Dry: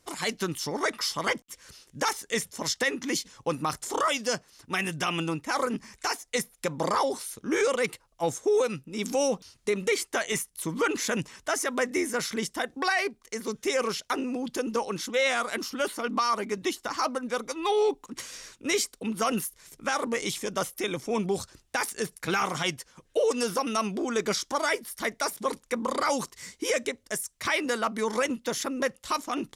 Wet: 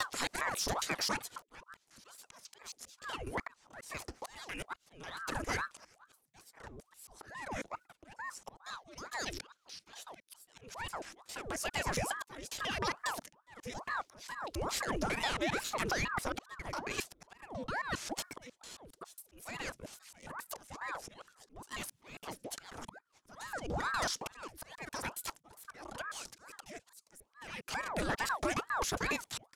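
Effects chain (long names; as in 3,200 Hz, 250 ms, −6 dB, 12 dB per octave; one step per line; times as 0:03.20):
slices reordered back to front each 136 ms, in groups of 3
gain on a spectral selection 0:08.65–0:10.36, 1,700–6,000 Hz +8 dB
noise gate −49 dBFS, range −23 dB
downward compressor 12 to 1, threshold −30 dBFS, peak gain reduction 14 dB
soft clipping −26 dBFS, distortion −18 dB
volume swells 643 ms
frequency shifter −37 Hz
ring modulator whose carrier an LFO sweeps 800 Hz, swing 85%, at 2.3 Hz
level +4 dB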